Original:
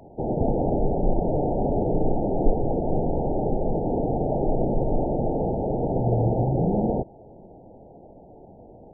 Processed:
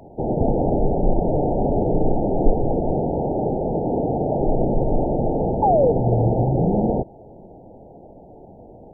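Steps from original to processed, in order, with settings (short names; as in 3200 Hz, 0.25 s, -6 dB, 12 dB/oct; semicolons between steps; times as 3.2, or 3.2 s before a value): 2.92–4.39 HPF 85 Hz 6 dB/oct; 5.62–5.92 painted sound fall 440–890 Hz -20 dBFS; gain +3.5 dB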